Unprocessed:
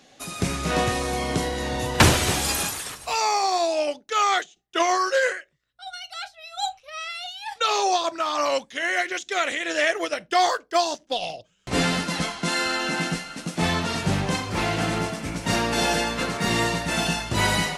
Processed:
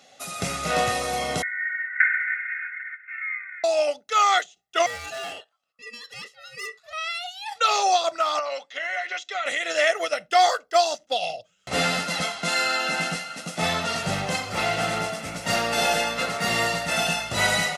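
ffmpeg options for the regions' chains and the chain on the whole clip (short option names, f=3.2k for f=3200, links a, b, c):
-filter_complex "[0:a]asettb=1/sr,asplit=3[a][b][c];[a]atrim=end=1.424[d];[b]atrim=start=1.42:end=3.64,asetpts=PTS-STARTPTS,afade=t=in:d=0.004:c=qsin,afade=t=out:st=2.216:d=0.004:c=qsin,aecho=1:1:3.3:0.75,atrim=end_sample=97902,acontrast=47,asuperpass=centerf=1800:order=12:qfactor=2.3[e];[c]atrim=start=3.636[f];[d][e]acrossfade=d=0.004:c1=hsin:c2=qsin[g];[g][f]acrossfade=d=0.004:c1=qsin:c2=hsin,asettb=1/sr,asplit=3[h][i][j];[h]atrim=end=4.864[k];[i]atrim=start=4.86:end=6.93,asetpts=PTS-STARTPTS,afade=t=in:d=0.004:c=qsin,afade=t=out:st=2.066:d=0.004:c=qsin,aeval=exprs='(tanh(28.2*val(0)+0.25)-tanh(0.25))/28.2':c=same,aeval=exprs='val(0)*sin(2*PI*1200*n/s)':c=same[l];[j]atrim=start=6.926[m];[k][l]acrossfade=d=0.004:c1=hsin:c2=qsin[n];[n][m]acrossfade=d=0.004:c1=qsin:c2=hsin,asettb=1/sr,asplit=3[o][p][q];[o]atrim=end=8.394[r];[p]atrim=start=8.39:end=9.46,asetpts=PTS-STARTPTS,afade=t=in:d=0.004:c=qsin,afade=t=out:st=1.066:d=0.004:c=qsin,aecho=1:1:6.8:0.44,atrim=end_sample=47187,acompressor=threshold=-25dB:ratio=10:attack=3.2:release=140:knee=1:detection=peak,highpass=460,lowpass=4.4k[s];[q]atrim=start=9.456[t];[r][s]acrossfade=d=0.004:c1=hsin:c2=qsin[u];[u][t]acrossfade=d=0.004:c1=qsin:c2=hsin,highpass=f=310:p=1,aecho=1:1:1.5:0.55"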